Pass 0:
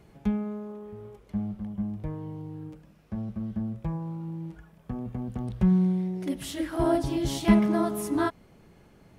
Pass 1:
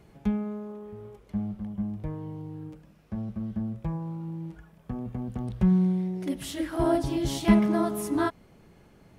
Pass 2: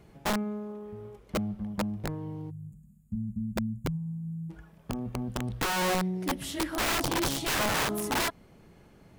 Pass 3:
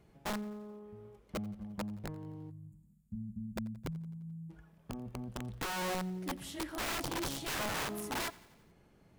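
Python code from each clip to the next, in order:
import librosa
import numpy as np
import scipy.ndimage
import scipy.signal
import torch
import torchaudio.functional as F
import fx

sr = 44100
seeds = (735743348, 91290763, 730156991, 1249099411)

y1 = x
y2 = fx.spec_box(y1, sr, start_s=2.5, length_s=2.0, low_hz=250.0, high_hz=6600.0, gain_db=-30)
y2 = (np.mod(10.0 ** (23.0 / 20.0) * y2 + 1.0, 2.0) - 1.0) / 10.0 ** (23.0 / 20.0)
y3 = fx.echo_feedback(y2, sr, ms=87, feedback_pct=60, wet_db=-21)
y3 = y3 * 10.0 ** (-8.5 / 20.0)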